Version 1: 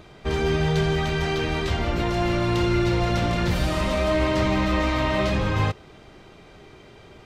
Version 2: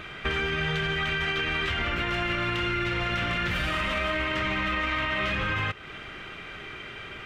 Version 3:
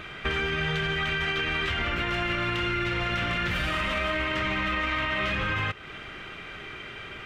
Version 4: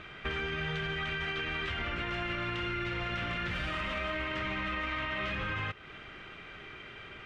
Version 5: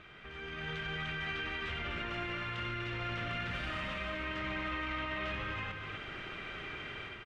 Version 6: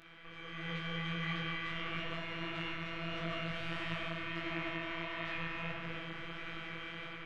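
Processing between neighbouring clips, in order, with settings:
high-order bell 2 kHz +13 dB; peak limiter -12.5 dBFS, peak gain reduction 7 dB; compression 3:1, threshold -29 dBFS, peak gain reduction 8.5 dB; trim +1.5 dB
no audible change
distance through air 57 m; trim -6.5 dB
peak limiter -34 dBFS, peak gain reduction 10 dB; level rider gain up to 10.5 dB; loudspeakers at several distances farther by 32 m -11 dB, 85 m -7 dB; trim -7.5 dB
simulated room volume 170 m³, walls hard, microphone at 0.38 m; robot voice 166 Hz; detune thickener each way 53 cents; trim +2.5 dB

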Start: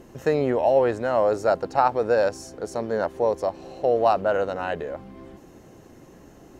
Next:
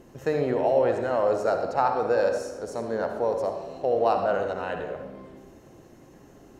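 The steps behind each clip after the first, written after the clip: reverberation RT60 1.1 s, pre-delay 54 ms, DRR 4.5 dB; trim -4 dB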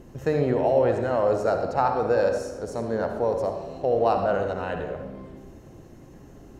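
bass shelf 170 Hz +11 dB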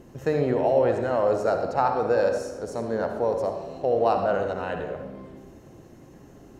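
bass shelf 72 Hz -9 dB

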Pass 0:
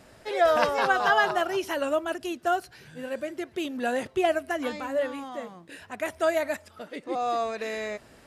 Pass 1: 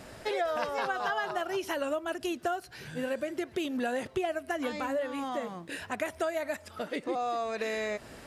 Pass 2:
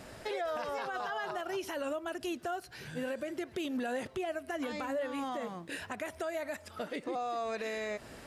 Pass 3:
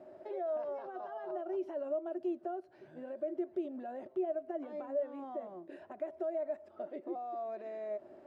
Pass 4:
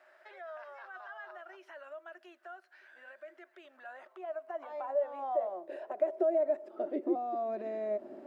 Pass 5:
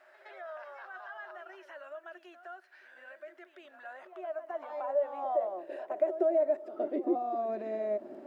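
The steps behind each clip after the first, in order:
compression 6:1, threshold -35 dBFS, peak gain reduction 17 dB; trim +5.5 dB
peak limiter -26.5 dBFS, peak gain reduction 8 dB; trim -1.5 dB
two resonant band-passes 470 Hz, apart 0.71 oct; trim +3.5 dB
high-pass sweep 1.6 kHz -> 230 Hz, 3.60–7.43 s; trim +4 dB
pre-echo 115 ms -12 dB; trim +1.5 dB

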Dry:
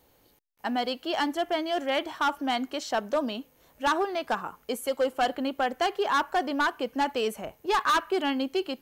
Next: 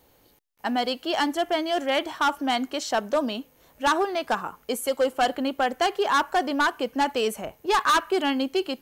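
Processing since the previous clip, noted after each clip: dynamic bell 8.6 kHz, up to +4 dB, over -48 dBFS, Q 0.8; trim +3 dB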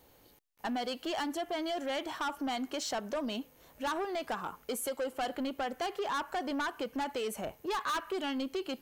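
compression 6:1, threshold -26 dBFS, peak gain reduction 8 dB; saturation -27 dBFS, distortion -14 dB; trim -2 dB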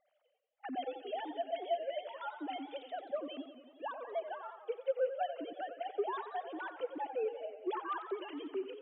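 formants replaced by sine waves; modulated delay 90 ms, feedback 68%, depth 131 cents, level -11 dB; trim -4.5 dB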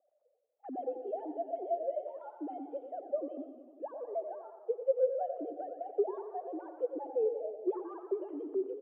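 Butterworth band-pass 430 Hz, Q 1.2; feedback delay 119 ms, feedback 49%, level -13 dB; trim +5 dB

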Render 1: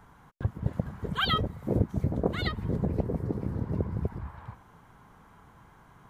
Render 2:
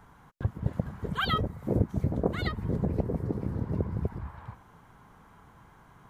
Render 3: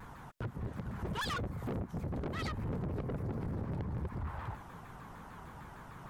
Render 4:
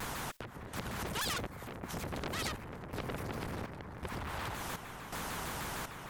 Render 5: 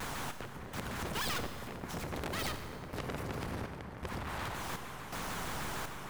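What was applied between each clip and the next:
dynamic bell 3.4 kHz, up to -5 dB, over -50 dBFS, Q 1.4
compression 3:1, threshold -34 dBFS, peak gain reduction 12 dB; saturation -39.5 dBFS, distortion -6 dB; vibrato with a chosen wave saw down 6.6 Hz, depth 250 cents; trim +6 dB
compression, threshold -43 dBFS, peak gain reduction 8 dB; trance gate "xxxx....xxxx" 164 bpm -12 dB; spectrum-flattening compressor 2:1; trim +14 dB
tracing distortion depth 0.15 ms; Schroeder reverb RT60 1.6 s, combs from 30 ms, DRR 8.5 dB

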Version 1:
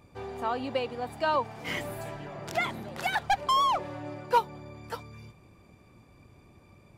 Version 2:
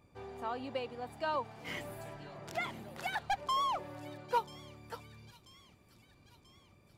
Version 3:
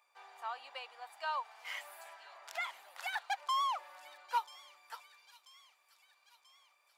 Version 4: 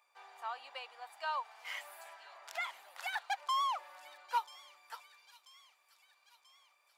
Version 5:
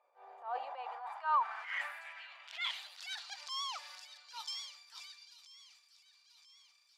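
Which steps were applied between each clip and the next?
feedback echo behind a high-pass 986 ms, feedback 56%, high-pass 3.4 kHz, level -11.5 dB; trim -8 dB
high-pass 820 Hz 24 dB/octave
no audible change
transient shaper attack -9 dB, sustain +9 dB; band-pass sweep 530 Hz -> 5 kHz, 0.36–3.12 s; trim +10 dB

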